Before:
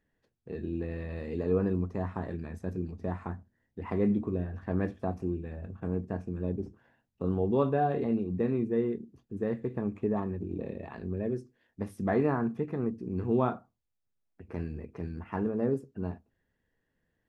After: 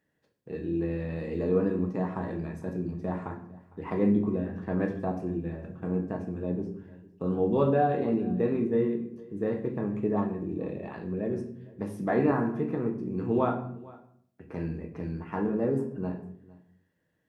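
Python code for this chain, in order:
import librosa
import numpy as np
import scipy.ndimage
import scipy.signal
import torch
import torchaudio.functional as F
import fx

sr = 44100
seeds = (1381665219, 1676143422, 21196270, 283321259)

y = scipy.signal.sosfilt(scipy.signal.butter(2, 110.0, 'highpass', fs=sr, output='sos'), x)
y = y + 10.0 ** (-22.0 / 20.0) * np.pad(y, (int(456 * sr / 1000.0), 0))[:len(y)]
y = fx.room_shoebox(y, sr, seeds[0], volume_m3=100.0, walls='mixed', distance_m=0.57)
y = y * 10.0 ** (1.0 / 20.0)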